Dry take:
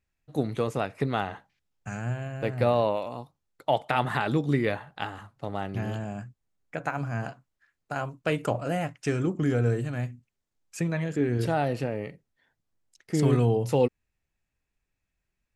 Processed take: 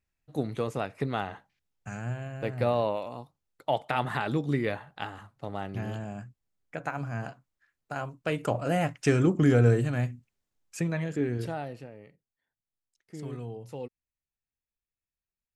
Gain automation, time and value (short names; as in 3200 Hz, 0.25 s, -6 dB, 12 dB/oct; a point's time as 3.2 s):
8.32 s -3 dB
8.93 s +4 dB
9.64 s +4 dB
11.27 s -3 dB
11.92 s -16 dB